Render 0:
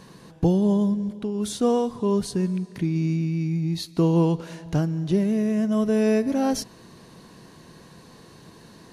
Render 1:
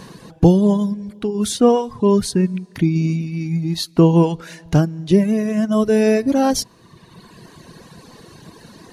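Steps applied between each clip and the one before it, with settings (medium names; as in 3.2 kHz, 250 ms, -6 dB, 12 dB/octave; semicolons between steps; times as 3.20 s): reverb removal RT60 1.5 s; trim +9 dB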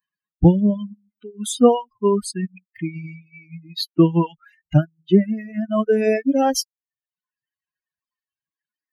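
expander on every frequency bin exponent 3; trim +3 dB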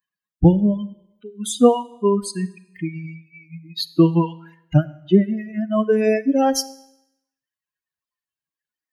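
Schroeder reverb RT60 0.82 s, combs from 33 ms, DRR 17 dB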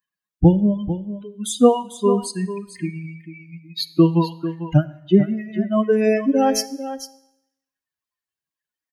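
delay 446 ms -12 dB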